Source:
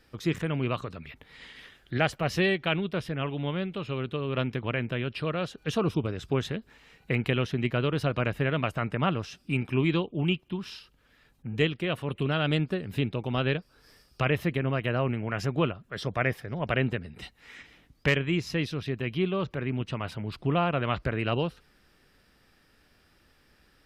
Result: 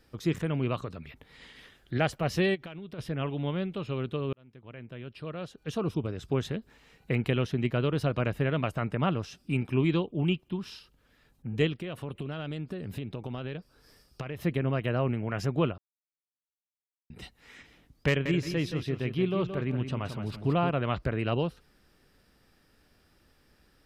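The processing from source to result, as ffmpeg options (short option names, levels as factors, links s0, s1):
-filter_complex "[0:a]asplit=3[s0][s1][s2];[s0]afade=t=out:st=2.54:d=0.02[s3];[s1]acompressor=threshold=0.0141:ratio=10:attack=3.2:release=140:knee=1:detection=peak,afade=t=in:st=2.54:d=0.02,afade=t=out:st=2.98:d=0.02[s4];[s2]afade=t=in:st=2.98:d=0.02[s5];[s3][s4][s5]amix=inputs=3:normalize=0,asettb=1/sr,asplit=3[s6][s7][s8];[s6]atrim=end=11.754[s9];[s7]atrim=start=11.75:end=14.42,asetpts=PTS-STARTPTS,afade=t=in:d=0.004:c=qsin,afade=t=out:st=2.666:d=0.004:c=qsin,acompressor=threshold=0.0282:ratio=10:attack=3.2:release=140:knee=1:detection=peak[s10];[s8]atrim=start=14.416[s11];[s9][s10]acrossfade=d=0.004:c1=hsin:c2=qsin[s12];[s12][s11]acrossfade=d=0.004:c1=qsin:c2=hsin,asettb=1/sr,asplit=3[s13][s14][s15];[s13]atrim=end=18.084[s16];[s14]atrim=start=18.08:end=20.7,asetpts=PTS-STARTPTS,afade=t=in:d=0.004:c=qsin,afade=t=out:st=2.616:d=0.004:c=qsin,aecho=1:1:173|346|519:0.376|0.094|0.0235,atrim=end_sample=115542[s17];[s15]atrim=start=20.696[s18];[s16][s17]acrossfade=d=0.004:c1=hsin:c2=qsin[s19];[s19][s18]acrossfade=d=0.004:c1=qsin:c2=hsin,asplit=4[s20][s21][s22][s23];[s20]atrim=end=4.33,asetpts=PTS-STARTPTS,afade=t=out:st=4.326:d=0.004:c=hsin[s24];[s21]atrim=start=4.33:end=15.78,asetpts=PTS-STARTPTS,afade=t=in:d=2.23,afade=t=out:st=11.446:d=0.004:c=hsin[s25];[s22]atrim=start=15.78:end=17.1,asetpts=PTS-STARTPTS,volume=0[s26];[s23]atrim=start=17.1,asetpts=PTS-STARTPTS,afade=t=in:d=0.004:c=hsin[s27];[s24][s25][s26][s27]concat=n=4:v=0:a=1,equalizer=f=2200:w=0.59:g=-4.5"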